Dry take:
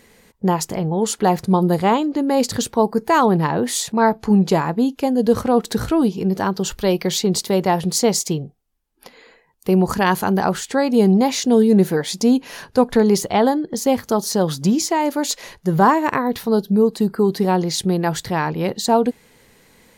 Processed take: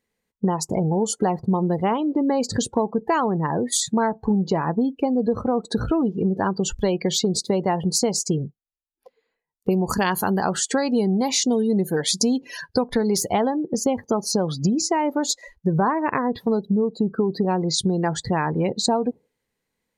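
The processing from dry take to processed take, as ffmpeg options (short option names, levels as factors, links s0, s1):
-filter_complex "[0:a]asettb=1/sr,asplit=3[s0][s1][s2];[s0]atrim=end=9.714[s3];[s1]atrim=start=9.71:end=13.3,asetpts=PTS-STARTPTS,afade=t=in:d=0.004:c=qsin,afade=t=out:st=3.586:d=0.004:c=qsin,highshelf=f=3000:g=8[s4];[s2]atrim=start=13.296[s5];[s3][s4]acrossfade=d=0.004:c1=hsin:c2=qsin[s6];[s6][s5]acrossfade=d=0.004:c1=qsin:c2=hsin,asplit=2[s7][s8];[s7]atrim=end=3.72,asetpts=PTS-STARTPTS,afade=t=out:st=3.14:d=0.58:silence=0.446684[s9];[s8]atrim=start=3.72,asetpts=PTS-STARTPTS,afade=t=in:d=0.004:c=hsin:silence=0.446684[s10];[s9][s10]concat=n=2:v=0:a=1,afftdn=nr=31:nf=-29,acompressor=threshold=0.0794:ratio=6,volume=1.58"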